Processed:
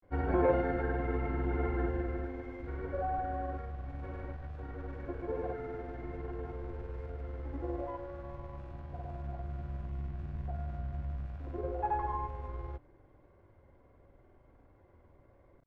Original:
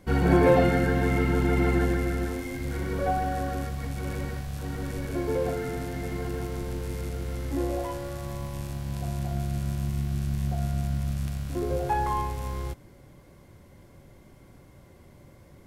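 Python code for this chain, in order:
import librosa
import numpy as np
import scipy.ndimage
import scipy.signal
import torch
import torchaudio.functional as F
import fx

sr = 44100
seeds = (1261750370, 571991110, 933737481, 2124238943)

y = scipy.signal.sosfilt(scipy.signal.butter(2, 1400.0, 'lowpass', fs=sr, output='sos'), x)
y = fx.peak_eq(y, sr, hz=170.0, db=-13.0, octaves=1.1)
y = fx.granulator(y, sr, seeds[0], grain_ms=100.0, per_s=20.0, spray_ms=100.0, spread_st=0)
y = F.gain(torch.from_numpy(y), -4.5).numpy()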